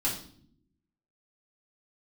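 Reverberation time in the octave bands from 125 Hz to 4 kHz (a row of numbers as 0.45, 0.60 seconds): 1.2, 1.1, 0.70, 0.50, 0.45, 0.50 seconds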